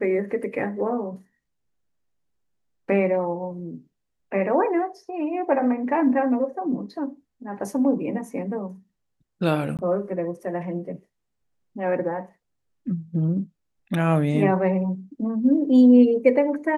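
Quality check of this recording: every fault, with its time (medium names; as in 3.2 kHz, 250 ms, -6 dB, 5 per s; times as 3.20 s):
9.77–9.79 s: dropout 18 ms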